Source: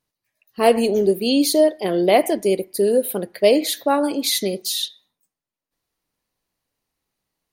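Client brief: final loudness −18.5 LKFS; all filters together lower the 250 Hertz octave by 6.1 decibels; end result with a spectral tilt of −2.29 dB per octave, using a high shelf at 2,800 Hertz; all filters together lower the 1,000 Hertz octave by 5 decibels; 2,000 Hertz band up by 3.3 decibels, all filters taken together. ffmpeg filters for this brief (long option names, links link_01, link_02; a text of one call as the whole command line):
ffmpeg -i in.wav -af "equalizer=frequency=250:width_type=o:gain=-7.5,equalizer=frequency=1000:width_type=o:gain=-8.5,equalizer=frequency=2000:width_type=o:gain=4,highshelf=frequency=2800:gain=4,volume=2dB" out.wav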